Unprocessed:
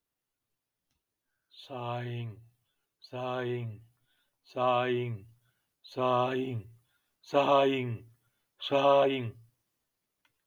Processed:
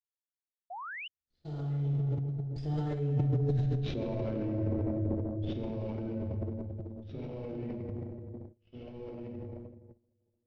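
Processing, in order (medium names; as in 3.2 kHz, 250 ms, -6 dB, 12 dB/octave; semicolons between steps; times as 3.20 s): CVSD coder 32 kbps; recorder AGC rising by 13 dB/s; Doppler pass-by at 3.68 s, 52 m/s, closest 7.4 m; in parallel at -9 dB: saturation -30 dBFS, distortion -12 dB; on the sum: peaking EQ 980 Hz -14 dB 0.83 oct; bucket-brigade echo 386 ms, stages 2048, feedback 43%, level -6 dB; plate-style reverb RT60 2 s, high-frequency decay 0.6×, DRR -4 dB; reverse; compression 10:1, threshold -38 dBFS, peak gain reduction 13 dB; reverse; tilt EQ -4.5 dB/octave; transient shaper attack -1 dB, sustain +11 dB; gate -45 dBFS, range -24 dB; painted sound rise, 0.70–1.08 s, 670–3100 Hz -41 dBFS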